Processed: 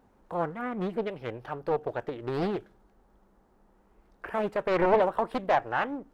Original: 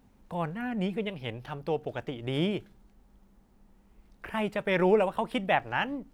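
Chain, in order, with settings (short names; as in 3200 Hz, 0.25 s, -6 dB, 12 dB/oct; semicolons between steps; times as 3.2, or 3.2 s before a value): one diode to ground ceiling -21 dBFS; band shelf 740 Hz +9 dB 2.7 oct; Doppler distortion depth 0.72 ms; gain -4.5 dB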